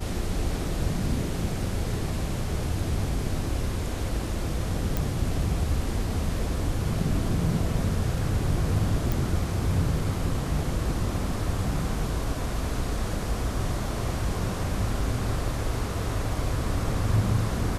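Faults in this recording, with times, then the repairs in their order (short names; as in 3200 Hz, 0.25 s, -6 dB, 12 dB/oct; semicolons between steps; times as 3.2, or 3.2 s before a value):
4.97 pop
9.12 pop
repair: de-click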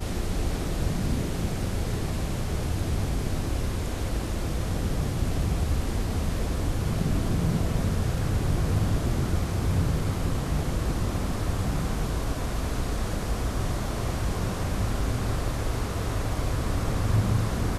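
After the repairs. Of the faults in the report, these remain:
none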